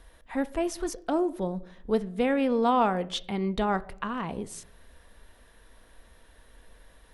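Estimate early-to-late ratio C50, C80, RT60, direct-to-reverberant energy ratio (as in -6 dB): 20.0 dB, 23.5 dB, 0.70 s, 12.0 dB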